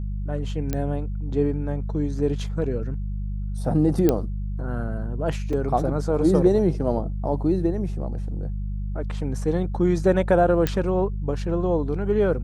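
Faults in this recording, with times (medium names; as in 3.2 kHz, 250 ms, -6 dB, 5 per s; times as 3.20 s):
hum 50 Hz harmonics 4 -28 dBFS
0.73 s: pop -12 dBFS
4.09 s: pop -7 dBFS
5.53 s: dropout 3.7 ms
10.67 s: pop -9 dBFS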